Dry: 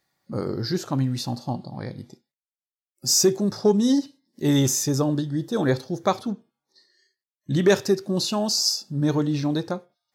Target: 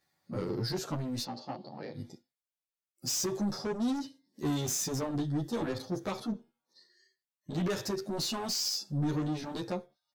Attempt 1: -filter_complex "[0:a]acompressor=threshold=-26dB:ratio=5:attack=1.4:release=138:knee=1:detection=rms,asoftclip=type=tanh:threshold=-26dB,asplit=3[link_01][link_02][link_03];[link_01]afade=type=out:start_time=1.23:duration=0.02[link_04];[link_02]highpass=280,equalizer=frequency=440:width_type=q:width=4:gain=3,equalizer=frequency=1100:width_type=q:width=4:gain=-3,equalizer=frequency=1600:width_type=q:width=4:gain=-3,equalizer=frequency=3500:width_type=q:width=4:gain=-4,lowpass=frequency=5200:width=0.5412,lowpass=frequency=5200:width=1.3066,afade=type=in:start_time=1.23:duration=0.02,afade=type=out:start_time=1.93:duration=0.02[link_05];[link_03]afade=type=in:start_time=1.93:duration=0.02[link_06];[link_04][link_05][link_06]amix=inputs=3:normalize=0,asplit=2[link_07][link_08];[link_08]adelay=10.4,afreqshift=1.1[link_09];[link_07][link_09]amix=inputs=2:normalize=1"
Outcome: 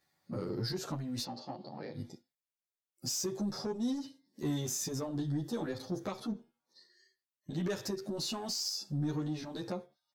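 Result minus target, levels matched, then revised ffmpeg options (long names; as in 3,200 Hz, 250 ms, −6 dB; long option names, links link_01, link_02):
downward compressor: peak gain reduction +7 dB
-filter_complex "[0:a]acompressor=threshold=-17dB:ratio=5:attack=1.4:release=138:knee=1:detection=rms,asoftclip=type=tanh:threshold=-26dB,asplit=3[link_01][link_02][link_03];[link_01]afade=type=out:start_time=1.23:duration=0.02[link_04];[link_02]highpass=280,equalizer=frequency=440:width_type=q:width=4:gain=3,equalizer=frequency=1100:width_type=q:width=4:gain=-3,equalizer=frequency=1600:width_type=q:width=4:gain=-3,equalizer=frequency=3500:width_type=q:width=4:gain=-4,lowpass=frequency=5200:width=0.5412,lowpass=frequency=5200:width=1.3066,afade=type=in:start_time=1.23:duration=0.02,afade=type=out:start_time=1.93:duration=0.02[link_05];[link_03]afade=type=in:start_time=1.93:duration=0.02[link_06];[link_04][link_05][link_06]amix=inputs=3:normalize=0,asplit=2[link_07][link_08];[link_08]adelay=10.4,afreqshift=1.1[link_09];[link_07][link_09]amix=inputs=2:normalize=1"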